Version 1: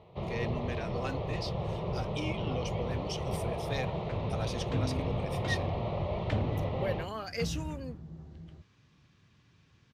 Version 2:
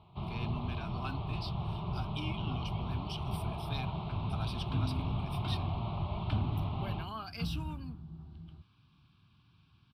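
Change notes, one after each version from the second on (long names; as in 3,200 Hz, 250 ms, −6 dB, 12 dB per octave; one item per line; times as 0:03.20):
master: add phaser with its sweep stopped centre 1,900 Hz, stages 6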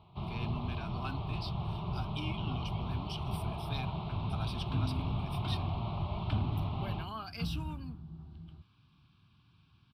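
first sound: remove low-pass filter 5,000 Hz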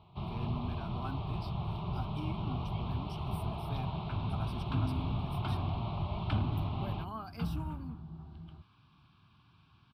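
speech: remove meter weighting curve D
second sound: add parametric band 880 Hz +7.5 dB 2.3 octaves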